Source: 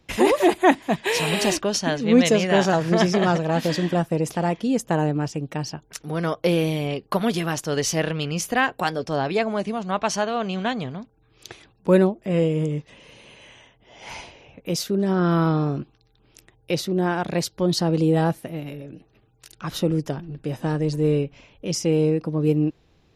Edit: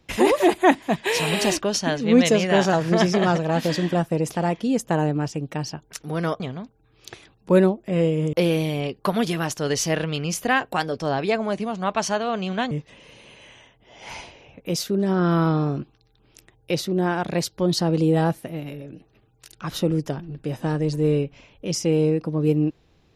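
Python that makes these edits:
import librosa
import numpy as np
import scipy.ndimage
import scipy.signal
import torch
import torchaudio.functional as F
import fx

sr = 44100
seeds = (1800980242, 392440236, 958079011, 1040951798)

y = fx.edit(x, sr, fx.move(start_s=10.78, length_s=1.93, to_s=6.4), tone=tone)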